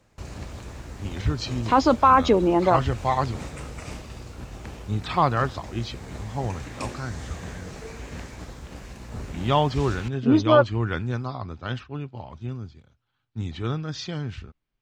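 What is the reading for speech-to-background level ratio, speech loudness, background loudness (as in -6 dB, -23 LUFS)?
15.0 dB, -24.0 LUFS, -39.0 LUFS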